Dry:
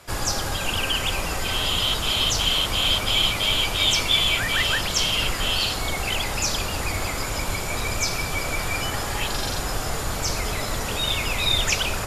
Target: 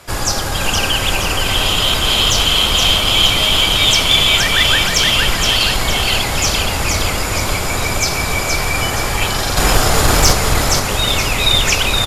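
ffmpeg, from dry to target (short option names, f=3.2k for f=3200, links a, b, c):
-filter_complex "[0:a]asettb=1/sr,asplit=3[a][b][c];[a]atrim=end=9.574[d];[b]atrim=start=9.57:end=10.33,asetpts=PTS-STARTPTS,afade=t=in:d=0.004:c=qsin,afade=t=out:st=0.756:d=0.004:c=qsin,acontrast=77[e];[c]atrim=start=10.326[f];[d][e]acrossfade=d=0.004:c1=hsin:c2=qsin[g];[g][f]acrossfade=d=0.004:c1=qsin:c2=hsin,asplit=2[h][i];[i]aecho=0:1:470|940|1410|1880|2350:0.631|0.271|0.117|0.0502|0.0216[j];[h][j]amix=inputs=2:normalize=0,aeval=exprs='0.708*(cos(1*acos(clip(val(0)/0.708,-1,1)))-cos(1*PI/2))+0.251*(cos(2*acos(clip(val(0)/0.708,-1,1)))-cos(2*PI/2))+0.316*(cos(5*acos(clip(val(0)/0.708,-1,1)))-cos(5*PI/2))+0.141*(cos(7*acos(clip(val(0)/0.708,-1,1)))-cos(7*PI/2))':c=same,volume=1.5dB"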